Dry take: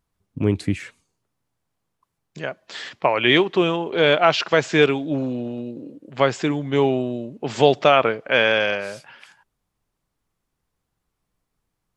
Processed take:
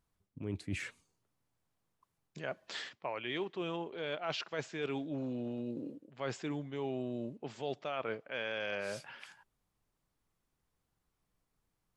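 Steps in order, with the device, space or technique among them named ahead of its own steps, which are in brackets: compression on the reversed sound (reverse; compression 8:1, threshold -30 dBFS, peak gain reduction 20.5 dB; reverse); trim -5 dB

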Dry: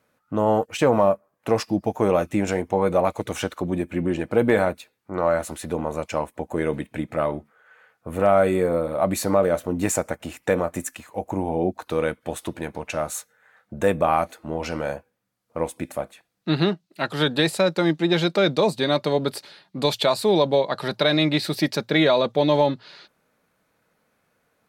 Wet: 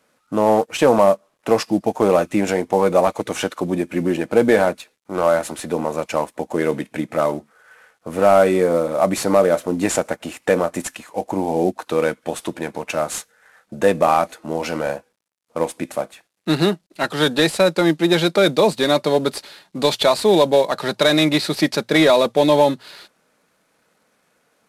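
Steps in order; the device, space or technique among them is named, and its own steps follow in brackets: early wireless headset (high-pass 170 Hz 12 dB/octave; CVSD coder 64 kbps); trim +5 dB

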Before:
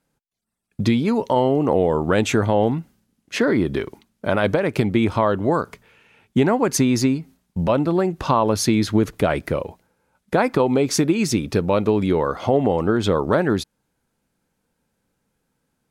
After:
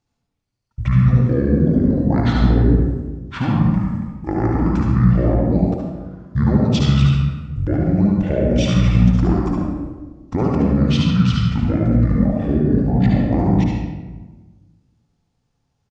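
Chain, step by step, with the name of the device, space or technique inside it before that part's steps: monster voice (pitch shift -10.5 st; bass shelf 100 Hz +5 dB; delay 72 ms -6.5 dB; reverberation RT60 1.3 s, pre-delay 54 ms, DRR -0.5 dB); trim -4 dB

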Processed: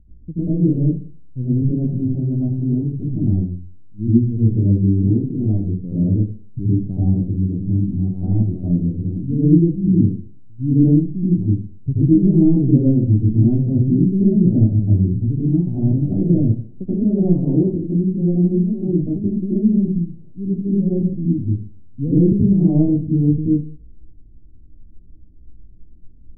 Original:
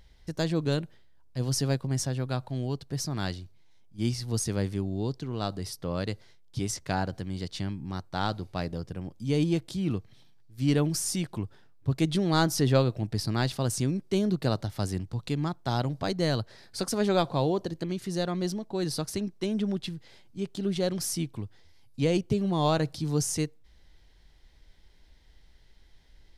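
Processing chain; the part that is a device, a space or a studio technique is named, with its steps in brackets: next room (low-pass 300 Hz 24 dB/octave; reverberation RT60 0.45 s, pre-delay 74 ms, DRR -10 dB); trim +5.5 dB

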